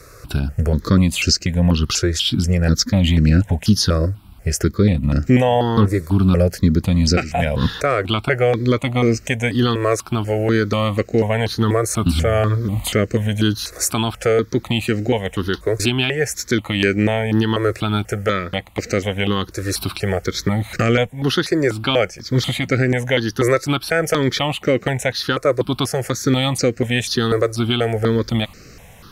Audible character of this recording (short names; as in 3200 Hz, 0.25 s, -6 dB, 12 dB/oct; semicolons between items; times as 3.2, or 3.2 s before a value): notches that jump at a steady rate 4.1 Hz 840–3400 Hz